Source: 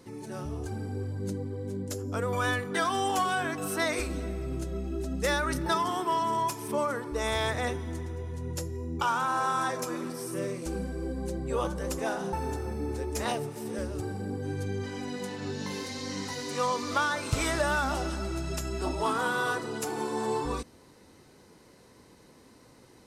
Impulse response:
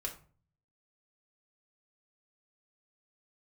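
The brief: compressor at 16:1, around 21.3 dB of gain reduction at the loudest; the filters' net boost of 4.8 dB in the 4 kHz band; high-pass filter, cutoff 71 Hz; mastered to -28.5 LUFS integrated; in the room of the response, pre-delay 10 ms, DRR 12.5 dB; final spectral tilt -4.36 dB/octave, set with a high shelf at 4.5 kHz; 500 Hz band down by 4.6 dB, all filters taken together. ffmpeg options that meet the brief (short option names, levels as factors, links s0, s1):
-filter_complex "[0:a]highpass=71,equalizer=f=500:t=o:g=-6,equalizer=f=4000:t=o:g=8,highshelf=f=4500:g=-4,acompressor=threshold=0.00631:ratio=16,asplit=2[s0][s1];[1:a]atrim=start_sample=2205,adelay=10[s2];[s1][s2]afir=irnorm=-1:irlink=0,volume=0.237[s3];[s0][s3]amix=inputs=2:normalize=0,volume=8.91"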